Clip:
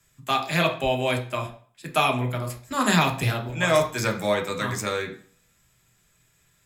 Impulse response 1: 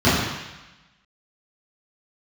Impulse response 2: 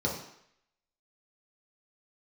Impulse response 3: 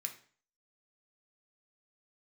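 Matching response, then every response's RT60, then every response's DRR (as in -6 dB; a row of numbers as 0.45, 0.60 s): 3; 1.0, 0.70, 0.45 s; -14.0, -4.0, 3.0 dB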